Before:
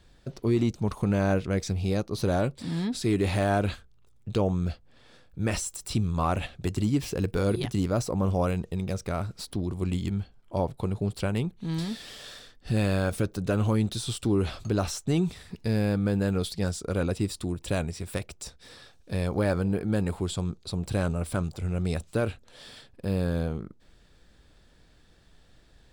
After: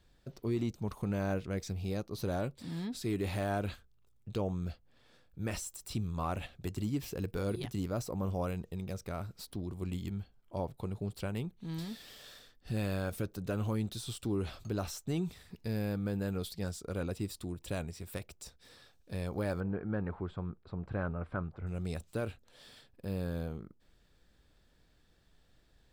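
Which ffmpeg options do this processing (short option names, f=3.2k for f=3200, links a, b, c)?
-filter_complex "[0:a]asettb=1/sr,asplit=3[a][b][c];[a]atrim=end=19.604[d];[b]atrim=start=19.6:end=21.67,asetpts=PTS-STARTPTS,afade=t=in:d=0.004:c=qsin,afade=t=out:st=2.066:d=0.004:c=qsin,lowpass=f=1.5k:t=q:w=1.8[e];[c]atrim=start=21.666[f];[d][e]acrossfade=d=0.004:c1=hsin:c2=qsin[g];[g][f]acrossfade=d=0.004:c1=qsin:c2=hsin,equalizer=f=14k:w=5.1:g=13.5,volume=-9dB"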